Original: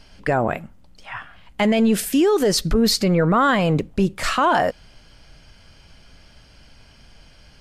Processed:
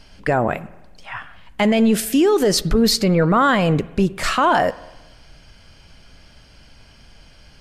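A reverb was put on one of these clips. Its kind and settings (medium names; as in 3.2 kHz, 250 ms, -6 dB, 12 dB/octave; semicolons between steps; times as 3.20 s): spring tank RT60 1.1 s, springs 48/54 ms, chirp 65 ms, DRR 18.5 dB; trim +1.5 dB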